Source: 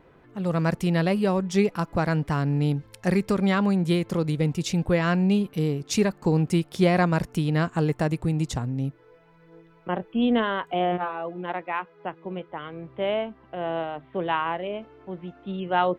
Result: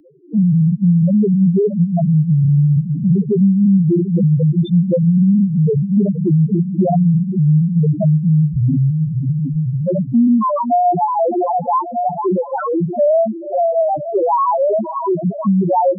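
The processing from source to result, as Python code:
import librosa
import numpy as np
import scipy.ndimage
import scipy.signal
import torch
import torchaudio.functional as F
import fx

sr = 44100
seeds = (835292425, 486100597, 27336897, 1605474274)

p1 = fx.highpass(x, sr, hz=170.0, slope=6)
p2 = fx.leveller(p1, sr, passes=5)
p3 = p2 + fx.echo_diffused(p2, sr, ms=557, feedback_pct=66, wet_db=-9.0, dry=0)
p4 = fx.spec_topn(p3, sr, count=1)
p5 = fx.band_squash(p4, sr, depth_pct=70)
y = p5 * librosa.db_to_amplitude(7.0)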